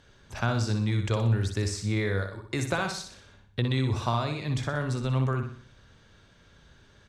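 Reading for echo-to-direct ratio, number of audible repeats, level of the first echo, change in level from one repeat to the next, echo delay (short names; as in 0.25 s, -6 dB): -5.5 dB, 4, -6.5 dB, -7.0 dB, 61 ms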